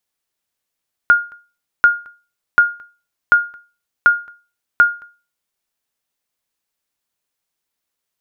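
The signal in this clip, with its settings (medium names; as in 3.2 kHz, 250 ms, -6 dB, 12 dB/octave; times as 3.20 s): sonar ping 1.42 kHz, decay 0.33 s, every 0.74 s, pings 6, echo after 0.22 s, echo -28 dB -2.5 dBFS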